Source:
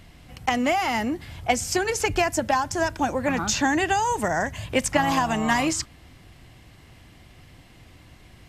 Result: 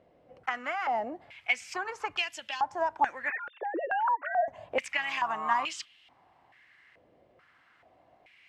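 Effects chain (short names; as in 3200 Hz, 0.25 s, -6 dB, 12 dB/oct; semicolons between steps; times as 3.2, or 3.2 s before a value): 3.3–4.48 sine-wave speech; stepped band-pass 2.3 Hz 530–3000 Hz; gain +3 dB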